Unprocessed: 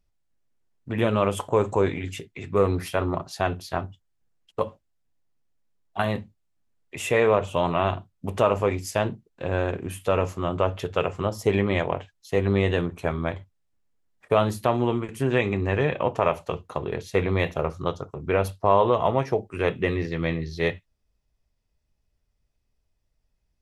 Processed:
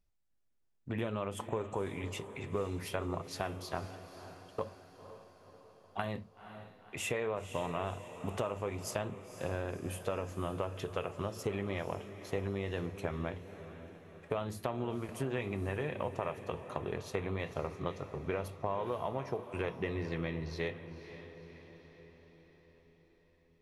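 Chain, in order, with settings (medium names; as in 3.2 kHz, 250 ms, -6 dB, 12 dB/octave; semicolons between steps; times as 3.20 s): compression, threshold -26 dBFS, peak gain reduction 12 dB; echo that smears into a reverb 511 ms, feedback 56%, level -12 dB; trim -6 dB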